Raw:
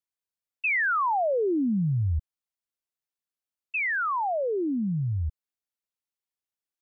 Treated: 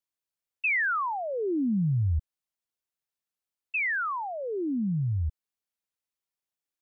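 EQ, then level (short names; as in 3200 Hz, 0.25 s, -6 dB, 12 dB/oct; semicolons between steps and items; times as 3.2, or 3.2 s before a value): dynamic EQ 670 Hz, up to -8 dB, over -41 dBFS, Q 1; 0.0 dB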